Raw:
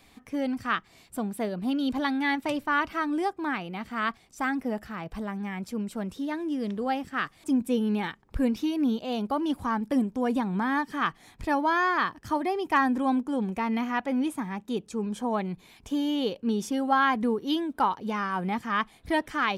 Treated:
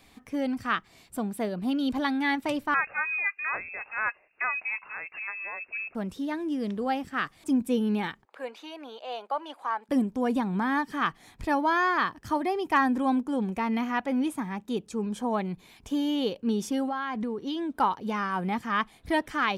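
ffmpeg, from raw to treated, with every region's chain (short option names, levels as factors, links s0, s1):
-filter_complex "[0:a]asettb=1/sr,asplit=3[s0][s1][s2];[s0]atrim=end=2.744[s3];[s1]atrim=start=2.74:end=5.95,asetpts=PTS-STARTPTS,afade=t=in:d=0.004:c=qsin,afade=t=out:st=3.206:d=0.004:c=qsin,lowshelf=f=190:g=-9.5,lowpass=f=2400:t=q:w=0.5098,lowpass=f=2400:t=q:w=0.6013,lowpass=f=2400:t=q:w=0.9,lowpass=f=2400:t=q:w=2.563,afreqshift=-2800[s4];[s2]atrim=start=5.946[s5];[s3][s4]acrossfade=d=0.004:c1=hsin:c2=qsin[s6];[s6][s5]acrossfade=d=0.004:c1=qsin:c2=hsin,asettb=1/sr,asplit=3[s7][s8][s9];[s7]atrim=end=8.254[s10];[s8]atrim=start=8.25:end=9.89,asetpts=PTS-STARTPTS,afade=t=in:d=0.004:c=qsin,afade=t=out:st=1.636:d=0.004:c=qsin,highpass=f=580:w=0.5412,highpass=f=580:w=1.3066,aemphasis=mode=reproduction:type=bsi,bandreject=f=5400:w=6.3[s11];[s9]atrim=start=9.886[s12];[s10][s11]acrossfade=d=0.004:c1=hsin:c2=qsin[s13];[s13][s12]acrossfade=d=0.004:c1=qsin:c2=hsin,asettb=1/sr,asplit=3[s14][s15][s16];[s14]atrim=end=16.884[s17];[s15]atrim=start=16.88:end=17.74,asetpts=PTS-STARTPTS,afade=t=in:d=0.004:c=qsin,afade=t=out:st=0.856:d=0.004:c=qsin,lowpass=7800,acompressor=threshold=0.0447:ratio=12:attack=3.2:release=140:knee=1:detection=peak[s18];[s16]atrim=start=17.736[s19];[s17][s18]acrossfade=d=0.004:c1=hsin:c2=qsin[s20];[s20][s19]acrossfade=d=0.004:c1=qsin:c2=hsin"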